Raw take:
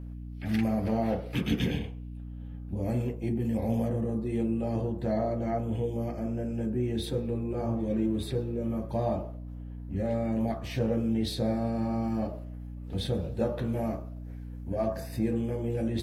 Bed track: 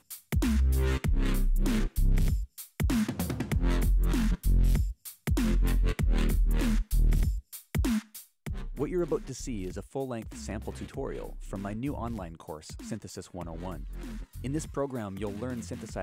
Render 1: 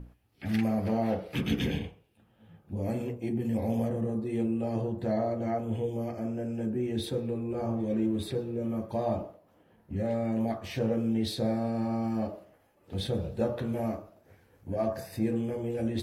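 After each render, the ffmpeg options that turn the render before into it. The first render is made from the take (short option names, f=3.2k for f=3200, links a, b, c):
-af "bandreject=f=60:t=h:w=6,bandreject=f=120:t=h:w=6,bandreject=f=180:t=h:w=6,bandreject=f=240:t=h:w=6,bandreject=f=300:t=h:w=6"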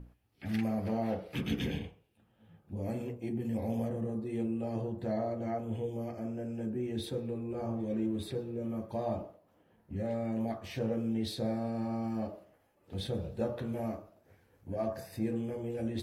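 -af "volume=-4.5dB"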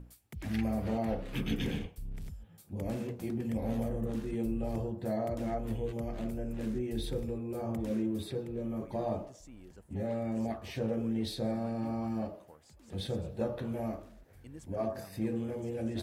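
-filter_complex "[1:a]volume=-16.5dB[a];[0:a][a]amix=inputs=2:normalize=0"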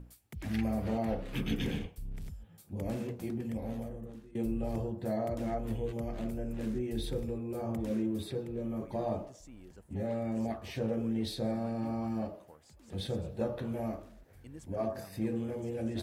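-filter_complex "[0:a]asplit=2[a][b];[a]atrim=end=4.35,asetpts=PTS-STARTPTS,afade=t=out:st=3.16:d=1.19:silence=0.0841395[c];[b]atrim=start=4.35,asetpts=PTS-STARTPTS,afade=t=in:d=0.004:c=hsin:silence=0.0841395[d];[c][d]concat=n=2:v=0:a=1"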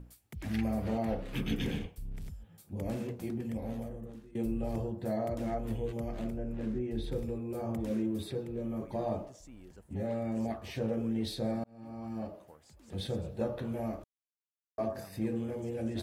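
-filter_complex "[0:a]asettb=1/sr,asplit=3[a][b][c];[a]atrim=end=6.304[d];[b]atrim=start=6.3:end=7.12,asetpts=PTS-STARTPTS,afade=t=in:d=0.004:c=qsin,afade=t=out:st=0.816:d=0.004:c=qsin,lowpass=f=2.2k:p=1[e];[c]atrim=start=7.116[f];[d][e]acrossfade=d=0.004:c1=hsin:c2=qsin[g];[g][f]acrossfade=d=0.004:c1=qsin:c2=hsin,asplit=4[h][i][j][k];[h]atrim=end=11.64,asetpts=PTS-STARTPTS,afade=t=out:st=11.636:d=0.004:c=hsin[l];[i]atrim=start=11.64:end=14.04,asetpts=PTS-STARTPTS,afade=t=in:d=0.82,afade=t=out:st=2.396:d=0.004:c=hsin[m];[j]atrim=start=14.04:end=14.78,asetpts=PTS-STARTPTS,volume=0[n];[k]atrim=start=14.78,asetpts=PTS-STARTPTS,afade=t=in:d=0.004:c=hsin[o];[l][m][n][o]concat=n=4:v=0:a=1"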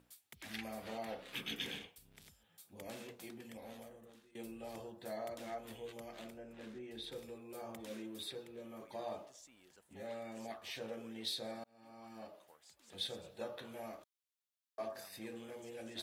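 -af "highpass=f=1.5k:p=1,equalizer=f=3.6k:t=o:w=0.44:g=4.5"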